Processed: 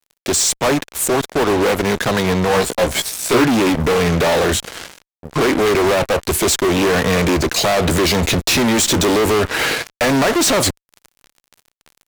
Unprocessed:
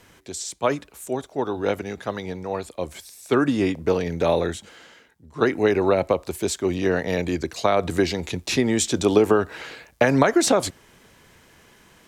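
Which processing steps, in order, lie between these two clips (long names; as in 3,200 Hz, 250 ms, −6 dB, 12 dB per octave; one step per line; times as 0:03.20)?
in parallel at +2 dB: downward compressor 6 to 1, threshold −29 dBFS, peak gain reduction 16.5 dB
on the sum: fuzz pedal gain 33 dB, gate −37 dBFS
0:02.48–0:03.44: double-tracking delay 17 ms −3 dB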